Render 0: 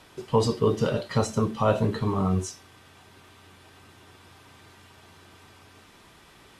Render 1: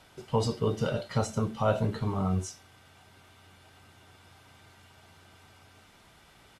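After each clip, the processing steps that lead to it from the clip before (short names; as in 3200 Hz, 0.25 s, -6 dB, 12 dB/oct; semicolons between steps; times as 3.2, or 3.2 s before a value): comb 1.4 ms, depth 32%; gain -4.5 dB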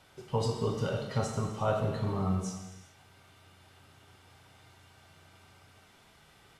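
non-linear reverb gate 0.46 s falling, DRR 2.5 dB; gain -4 dB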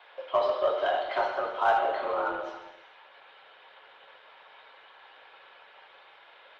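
mistuned SSB +150 Hz 320–3500 Hz; in parallel at -4.5 dB: soft clip -33.5 dBFS, distortion -9 dB; on the sum: gain +5.5 dB; Opus 20 kbps 48000 Hz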